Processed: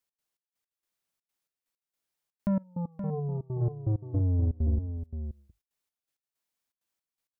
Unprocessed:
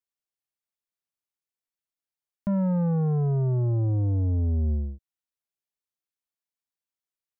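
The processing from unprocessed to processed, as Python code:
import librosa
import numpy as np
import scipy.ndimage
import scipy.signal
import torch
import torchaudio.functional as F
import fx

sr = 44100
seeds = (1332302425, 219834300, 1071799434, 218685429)

p1 = fx.hum_notches(x, sr, base_hz=50, count=3)
p2 = fx.over_compress(p1, sr, threshold_db=-30.0, ratio=-0.5)
p3 = p1 + (p2 * 10.0 ** (-1.0 / 20.0))
p4 = fx.step_gate(p3, sr, bpm=163, pattern='x.xx..x..xxx', floor_db=-24.0, edge_ms=4.5)
p5 = fx.cheby_ripple(p4, sr, hz=1200.0, ripple_db=9, at=(2.62, 3.6), fade=0.02)
p6 = p5 + 10.0 ** (-9.0 / 20.0) * np.pad(p5, (int(524 * sr / 1000.0), 0))[:len(p5)]
y = p6 * 10.0 ** (-3.0 / 20.0)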